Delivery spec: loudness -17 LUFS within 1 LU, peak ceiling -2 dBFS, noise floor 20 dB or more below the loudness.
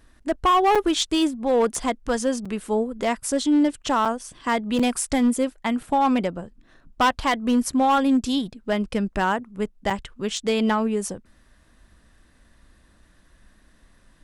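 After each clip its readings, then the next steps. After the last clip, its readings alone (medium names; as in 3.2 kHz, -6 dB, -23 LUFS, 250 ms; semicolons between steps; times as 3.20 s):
clipped samples 1.6%; clipping level -14.0 dBFS; dropouts 5; longest dropout 5.6 ms; loudness -23.0 LUFS; peak level -14.0 dBFS; loudness target -17.0 LUFS
-> clip repair -14 dBFS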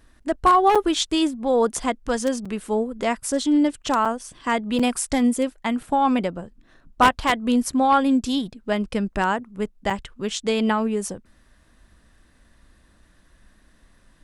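clipped samples 0.0%; dropouts 5; longest dropout 5.6 ms
-> interpolate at 0.75/2.45/4.05/4.79/9.90 s, 5.6 ms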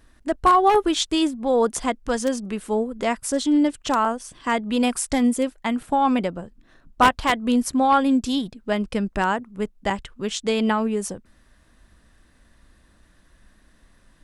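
dropouts 0; loudness -22.0 LUFS; peak level -5.0 dBFS; loudness target -17.0 LUFS
-> trim +5 dB; peak limiter -2 dBFS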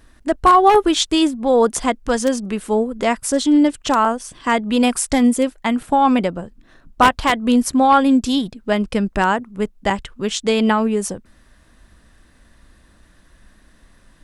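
loudness -17.5 LUFS; peak level -2.0 dBFS; noise floor -53 dBFS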